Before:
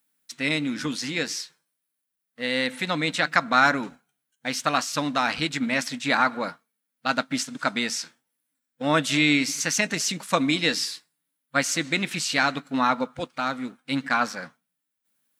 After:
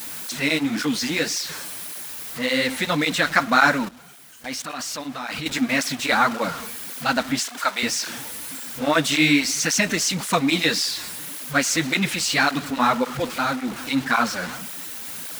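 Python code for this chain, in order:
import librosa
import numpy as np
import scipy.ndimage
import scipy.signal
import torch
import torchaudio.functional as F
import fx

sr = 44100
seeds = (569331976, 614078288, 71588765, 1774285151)

y = x + 0.5 * 10.0 ** (-28.5 / 20.0) * np.sign(x)
y = fx.level_steps(y, sr, step_db=16, at=(3.85, 5.46))
y = fx.highpass(y, sr, hz=580.0, slope=12, at=(7.39, 7.83))
y = fx.flanger_cancel(y, sr, hz=1.8, depth_ms=8.0)
y = y * 10.0 ** (4.5 / 20.0)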